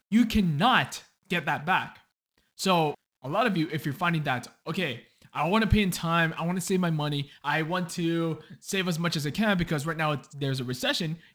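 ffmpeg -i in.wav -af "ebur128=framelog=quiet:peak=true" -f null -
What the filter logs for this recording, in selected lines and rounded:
Integrated loudness:
  I:         -27.2 LUFS
  Threshold: -37.6 LUFS
Loudness range:
  LRA:         1.9 LU
  Threshold: -47.9 LUFS
  LRA low:   -28.8 LUFS
  LRA high:  -26.9 LUFS
True peak:
  Peak:       -8.4 dBFS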